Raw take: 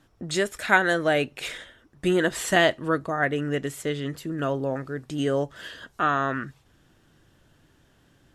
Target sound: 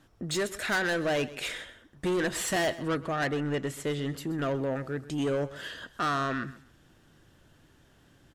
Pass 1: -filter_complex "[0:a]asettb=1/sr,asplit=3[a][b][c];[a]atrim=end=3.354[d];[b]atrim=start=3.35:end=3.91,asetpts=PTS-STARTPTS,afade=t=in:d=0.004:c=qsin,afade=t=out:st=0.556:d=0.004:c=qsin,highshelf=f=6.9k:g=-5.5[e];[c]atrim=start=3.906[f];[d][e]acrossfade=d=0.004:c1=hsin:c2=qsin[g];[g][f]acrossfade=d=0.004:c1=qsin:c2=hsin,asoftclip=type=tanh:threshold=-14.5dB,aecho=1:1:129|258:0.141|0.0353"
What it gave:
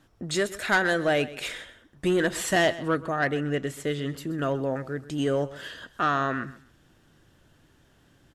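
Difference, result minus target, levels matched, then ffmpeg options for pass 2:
soft clip: distortion -8 dB
-filter_complex "[0:a]asettb=1/sr,asplit=3[a][b][c];[a]atrim=end=3.354[d];[b]atrim=start=3.35:end=3.91,asetpts=PTS-STARTPTS,afade=t=in:d=0.004:c=qsin,afade=t=out:st=0.556:d=0.004:c=qsin,highshelf=f=6.9k:g=-5.5[e];[c]atrim=start=3.906[f];[d][e]acrossfade=d=0.004:c1=hsin:c2=qsin[g];[g][f]acrossfade=d=0.004:c1=qsin:c2=hsin,asoftclip=type=tanh:threshold=-24dB,aecho=1:1:129|258:0.141|0.0353"

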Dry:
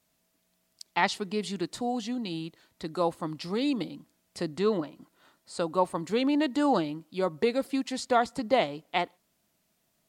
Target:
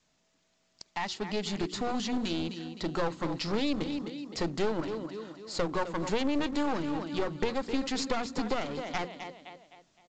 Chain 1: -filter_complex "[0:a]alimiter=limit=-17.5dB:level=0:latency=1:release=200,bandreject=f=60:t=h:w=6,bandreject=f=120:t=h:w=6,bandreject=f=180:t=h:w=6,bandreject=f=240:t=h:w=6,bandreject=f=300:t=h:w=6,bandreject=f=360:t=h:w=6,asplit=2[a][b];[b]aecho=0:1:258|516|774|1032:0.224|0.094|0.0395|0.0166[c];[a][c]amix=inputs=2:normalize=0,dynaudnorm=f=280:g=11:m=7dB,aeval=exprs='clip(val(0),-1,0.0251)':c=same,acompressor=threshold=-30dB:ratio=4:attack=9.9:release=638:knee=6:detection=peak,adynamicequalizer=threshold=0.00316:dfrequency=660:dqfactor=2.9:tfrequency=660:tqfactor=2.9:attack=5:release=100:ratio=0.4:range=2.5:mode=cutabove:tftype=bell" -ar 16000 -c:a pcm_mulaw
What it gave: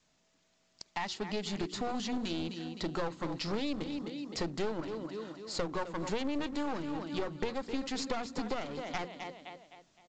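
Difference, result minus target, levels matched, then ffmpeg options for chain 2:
compressor: peak gain reduction +5 dB
-filter_complex "[0:a]alimiter=limit=-17.5dB:level=0:latency=1:release=200,bandreject=f=60:t=h:w=6,bandreject=f=120:t=h:w=6,bandreject=f=180:t=h:w=6,bandreject=f=240:t=h:w=6,bandreject=f=300:t=h:w=6,bandreject=f=360:t=h:w=6,asplit=2[a][b];[b]aecho=0:1:258|516|774|1032:0.224|0.094|0.0395|0.0166[c];[a][c]amix=inputs=2:normalize=0,dynaudnorm=f=280:g=11:m=7dB,aeval=exprs='clip(val(0),-1,0.0251)':c=same,acompressor=threshold=-23dB:ratio=4:attack=9.9:release=638:knee=6:detection=peak,adynamicequalizer=threshold=0.00316:dfrequency=660:dqfactor=2.9:tfrequency=660:tqfactor=2.9:attack=5:release=100:ratio=0.4:range=2.5:mode=cutabove:tftype=bell" -ar 16000 -c:a pcm_mulaw

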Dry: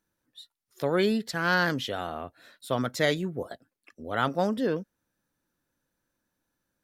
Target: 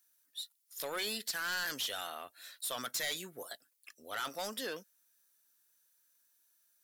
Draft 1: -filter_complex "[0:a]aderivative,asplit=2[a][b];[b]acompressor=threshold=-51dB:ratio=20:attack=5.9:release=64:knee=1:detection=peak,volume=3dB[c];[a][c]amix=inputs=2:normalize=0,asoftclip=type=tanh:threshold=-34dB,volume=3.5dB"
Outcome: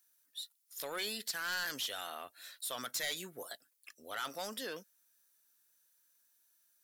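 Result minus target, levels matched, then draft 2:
compressor: peak gain reduction +7.5 dB
-filter_complex "[0:a]aderivative,asplit=2[a][b];[b]acompressor=threshold=-43dB:ratio=20:attack=5.9:release=64:knee=1:detection=peak,volume=3dB[c];[a][c]amix=inputs=2:normalize=0,asoftclip=type=tanh:threshold=-34dB,volume=3.5dB"

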